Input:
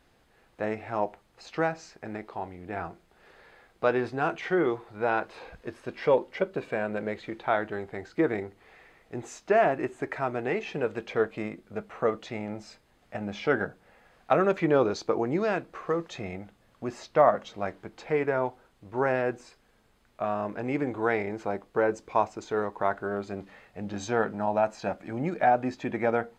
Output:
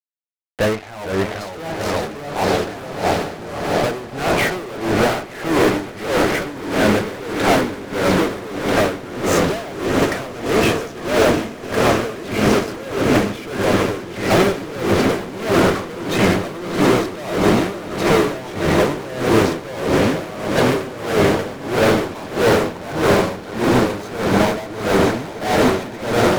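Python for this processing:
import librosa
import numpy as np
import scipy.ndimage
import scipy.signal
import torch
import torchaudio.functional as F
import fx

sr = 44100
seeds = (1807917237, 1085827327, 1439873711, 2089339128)

p1 = fx.env_lowpass_down(x, sr, base_hz=1400.0, full_db=-23.0)
p2 = fx.echo_pitch(p1, sr, ms=383, semitones=-2, count=3, db_per_echo=-3.0)
p3 = fx.fuzz(p2, sr, gain_db=40.0, gate_db=-44.0)
p4 = p3 + fx.echo_swell(p3, sr, ms=146, loudest=8, wet_db=-13, dry=0)
y = p4 * 10.0 ** (-18 * (0.5 - 0.5 * np.cos(2.0 * np.pi * 1.6 * np.arange(len(p4)) / sr)) / 20.0)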